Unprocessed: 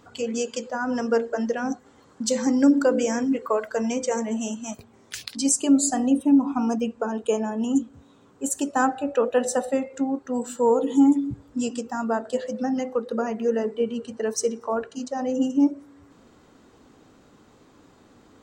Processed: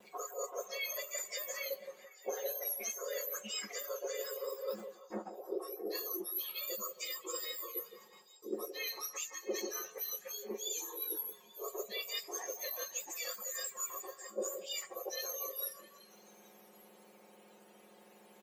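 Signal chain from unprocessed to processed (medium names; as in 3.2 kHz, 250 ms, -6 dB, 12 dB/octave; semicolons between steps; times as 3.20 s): spectrum inverted on a logarithmic axis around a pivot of 1.8 kHz; treble shelf 2.6 kHz -10 dB; reverse; compression 16:1, threshold -38 dBFS, peak gain reduction 29 dB; reverse; comb 5.5 ms, depth 55%; de-hum 419.2 Hz, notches 2; gate with hold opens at -54 dBFS; repeats whose band climbs or falls 167 ms, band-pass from 550 Hz, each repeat 0.7 oct, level -7 dB; trim +1 dB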